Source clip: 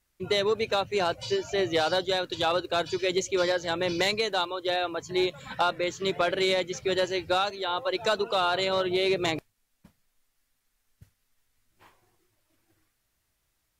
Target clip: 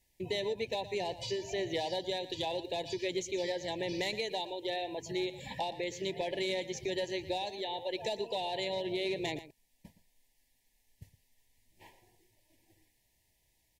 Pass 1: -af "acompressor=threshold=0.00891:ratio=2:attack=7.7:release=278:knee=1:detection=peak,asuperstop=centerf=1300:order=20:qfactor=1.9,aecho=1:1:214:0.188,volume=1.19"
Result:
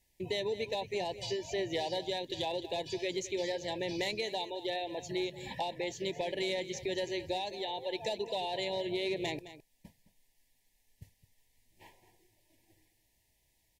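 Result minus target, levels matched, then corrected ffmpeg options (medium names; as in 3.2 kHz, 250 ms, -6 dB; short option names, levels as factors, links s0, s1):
echo 97 ms late
-af "acompressor=threshold=0.00891:ratio=2:attack=7.7:release=278:knee=1:detection=peak,asuperstop=centerf=1300:order=20:qfactor=1.9,aecho=1:1:117:0.188,volume=1.19"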